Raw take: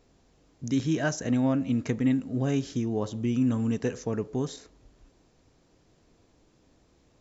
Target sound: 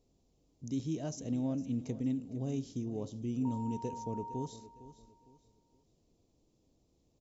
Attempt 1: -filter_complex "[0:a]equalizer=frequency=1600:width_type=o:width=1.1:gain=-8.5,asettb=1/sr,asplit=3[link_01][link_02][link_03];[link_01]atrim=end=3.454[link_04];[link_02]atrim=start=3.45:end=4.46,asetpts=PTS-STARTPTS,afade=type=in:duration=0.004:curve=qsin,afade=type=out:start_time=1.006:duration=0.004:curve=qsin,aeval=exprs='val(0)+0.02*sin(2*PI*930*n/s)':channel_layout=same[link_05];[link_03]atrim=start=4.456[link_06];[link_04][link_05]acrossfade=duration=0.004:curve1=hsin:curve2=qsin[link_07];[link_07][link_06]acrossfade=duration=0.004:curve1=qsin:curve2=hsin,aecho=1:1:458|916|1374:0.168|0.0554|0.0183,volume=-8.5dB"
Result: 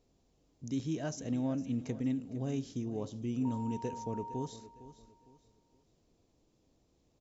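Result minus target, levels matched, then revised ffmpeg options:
2,000 Hz band +7.5 dB
-filter_complex "[0:a]equalizer=frequency=1600:width_type=o:width=1.1:gain=-19.5,asettb=1/sr,asplit=3[link_01][link_02][link_03];[link_01]atrim=end=3.454[link_04];[link_02]atrim=start=3.45:end=4.46,asetpts=PTS-STARTPTS,afade=type=in:duration=0.004:curve=qsin,afade=type=out:start_time=1.006:duration=0.004:curve=qsin,aeval=exprs='val(0)+0.02*sin(2*PI*930*n/s)':channel_layout=same[link_05];[link_03]atrim=start=4.456[link_06];[link_04][link_05]acrossfade=duration=0.004:curve1=hsin:curve2=qsin[link_07];[link_07][link_06]acrossfade=duration=0.004:curve1=qsin:curve2=hsin,aecho=1:1:458|916|1374:0.168|0.0554|0.0183,volume=-8.5dB"

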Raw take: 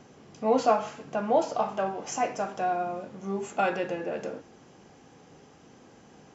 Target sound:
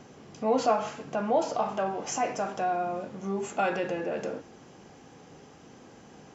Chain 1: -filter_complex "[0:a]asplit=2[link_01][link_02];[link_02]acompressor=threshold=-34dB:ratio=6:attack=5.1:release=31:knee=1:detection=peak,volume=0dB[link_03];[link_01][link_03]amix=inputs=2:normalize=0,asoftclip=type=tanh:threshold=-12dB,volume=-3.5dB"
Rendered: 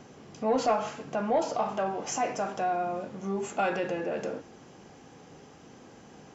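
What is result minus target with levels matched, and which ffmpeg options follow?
soft clipping: distortion +21 dB
-filter_complex "[0:a]asplit=2[link_01][link_02];[link_02]acompressor=threshold=-34dB:ratio=6:attack=5.1:release=31:knee=1:detection=peak,volume=0dB[link_03];[link_01][link_03]amix=inputs=2:normalize=0,asoftclip=type=tanh:threshold=-0.5dB,volume=-3.5dB"

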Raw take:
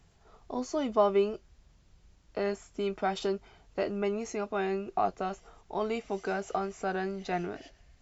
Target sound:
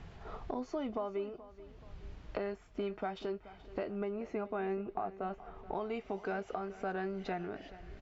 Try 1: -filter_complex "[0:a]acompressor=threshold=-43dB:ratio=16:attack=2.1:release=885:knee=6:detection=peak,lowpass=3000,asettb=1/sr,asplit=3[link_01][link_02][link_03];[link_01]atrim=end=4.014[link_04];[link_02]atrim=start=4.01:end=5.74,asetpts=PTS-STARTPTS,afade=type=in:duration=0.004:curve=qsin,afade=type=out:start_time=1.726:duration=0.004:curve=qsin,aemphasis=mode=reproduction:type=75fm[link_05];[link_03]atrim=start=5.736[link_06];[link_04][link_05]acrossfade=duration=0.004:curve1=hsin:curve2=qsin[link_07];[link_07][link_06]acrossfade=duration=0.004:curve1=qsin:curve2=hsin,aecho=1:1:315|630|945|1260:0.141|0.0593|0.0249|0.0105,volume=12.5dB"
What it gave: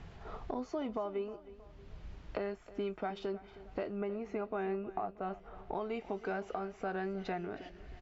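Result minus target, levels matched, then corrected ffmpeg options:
echo 113 ms early
-filter_complex "[0:a]acompressor=threshold=-43dB:ratio=16:attack=2.1:release=885:knee=6:detection=peak,lowpass=3000,asettb=1/sr,asplit=3[link_01][link_02][link_03];[link_01]atrim=end=4.014[link_04];[link_02]atrim=start=4.01:end=5.74,asetpts=PTS-STARTPTS,afade=type=in:duration=0.004:curve=qsin,afade=type=out:start_time=1.726:duration=0.004:curve=qsin,aemphasis=mode=reproduction:type=75fm[link_05];[link_03]atrim=start=5.736[link_06];[link_04][link_05]acrossfade=duration=0.004:curve1=hsin:curve2=qsin[link_07];[link_07][link_06]acrossfade=duration=0.004:curve1=qsin:curve2=hsin,aecho=1:1:428|856|1284|1712:0.141|0.0593|0.0249|0.0105,volume=12.5dB"

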